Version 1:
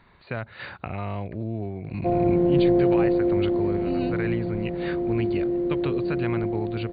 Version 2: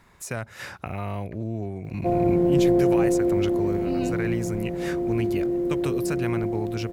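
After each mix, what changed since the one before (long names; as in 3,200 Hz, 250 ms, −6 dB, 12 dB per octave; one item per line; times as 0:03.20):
master: remove linear-phase brick-wall low-pass 4,700 Hz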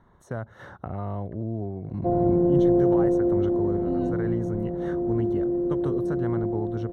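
master: add moving average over 18 samples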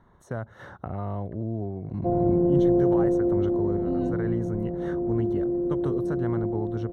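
background: add high-frequency loss of the air 490 metres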